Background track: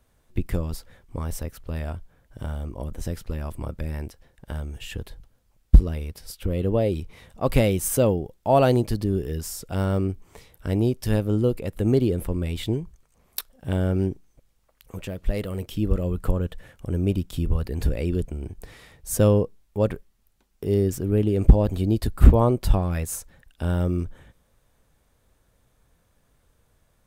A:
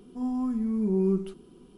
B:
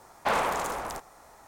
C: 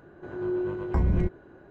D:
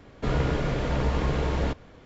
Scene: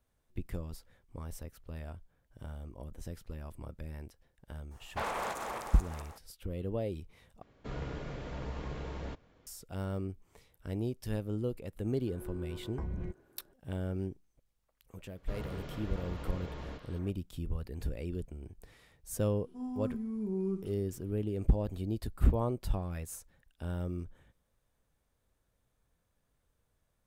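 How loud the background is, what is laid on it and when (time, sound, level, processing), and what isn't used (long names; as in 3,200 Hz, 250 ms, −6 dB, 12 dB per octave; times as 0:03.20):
background track −13 dB
0:04.71: mix in B −10 dB + feedback delay that plays each chunk backwards 219 ms, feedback 46%, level −3 dB
0:07.42: overwrite with D −14.5 dB
0:11.84: mix in C −14.5 dB
0:15.05: mix in D −17 dB + echo through a band-pass that steps 206 ms, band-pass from 3,700 Hz, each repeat −1.4 octaves, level −1.5 dB
0:19.39: mix in A −9.5 dB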